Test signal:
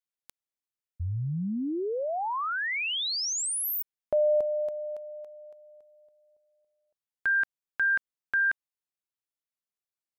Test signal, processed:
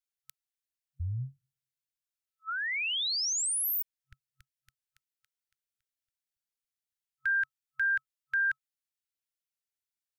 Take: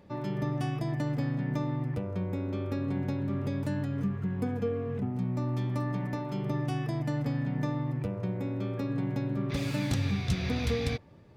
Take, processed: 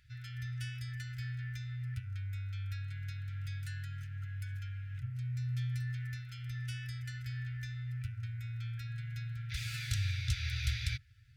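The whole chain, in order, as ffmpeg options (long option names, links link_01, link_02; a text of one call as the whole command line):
ffmpeg -i in.wav -af "afftfilt=real='re*(1-between(b*sr/4096,130,1300))':imag='im*(1-between(b*sr/4096,130,1300))':win_size=4096:overlap=0.75,equalizer=frequency=430:width=0.3:gain=-6" out.wav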